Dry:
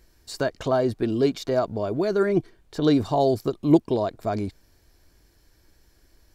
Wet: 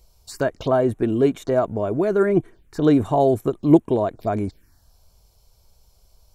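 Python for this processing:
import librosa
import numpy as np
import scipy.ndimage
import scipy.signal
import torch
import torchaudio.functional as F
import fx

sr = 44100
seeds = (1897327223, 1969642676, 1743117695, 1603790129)

y = fx.env_phaser(x, sr, low_hz=280.0, high_hz=4800.0, full_db=-23.0)
y = y * 10.0 ** (3.5 / 20.0)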